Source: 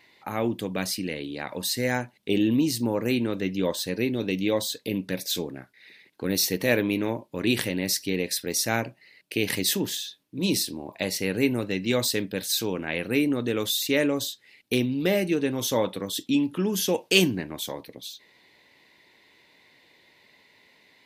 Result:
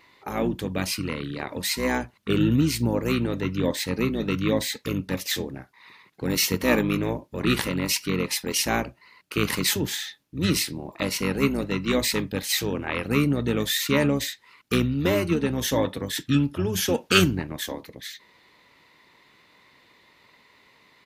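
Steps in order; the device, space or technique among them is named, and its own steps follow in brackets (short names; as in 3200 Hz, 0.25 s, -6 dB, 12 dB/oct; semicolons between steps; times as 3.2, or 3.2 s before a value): octave pedal (harmoniser -12 st -4 dB)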